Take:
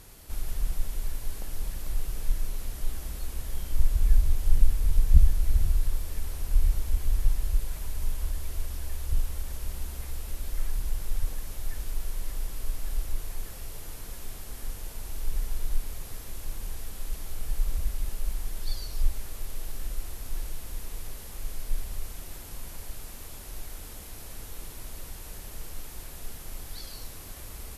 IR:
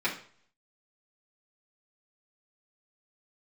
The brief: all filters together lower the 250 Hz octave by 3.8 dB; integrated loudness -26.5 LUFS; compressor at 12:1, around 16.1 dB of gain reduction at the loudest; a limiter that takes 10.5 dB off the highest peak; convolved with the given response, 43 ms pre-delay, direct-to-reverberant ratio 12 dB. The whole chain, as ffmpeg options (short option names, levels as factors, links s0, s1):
-filter_complex "[0:a]equalizer=f=250:t=o:g=-6,acompressor=threshold=0.0501:ratio=12,alimiter=level_in=2.24:limit=0.0631:level=0:latency=1,volume=0.447,asplit=2[s0][s1];[1:a]atrim=start_sample=2205,adelay=43[s2];[s1][s2]afir=irnorm=-1:irlink=0,volume=0.0794[s3];[s0][s3]amix=inputs=2:normalize=0,volume=8.41"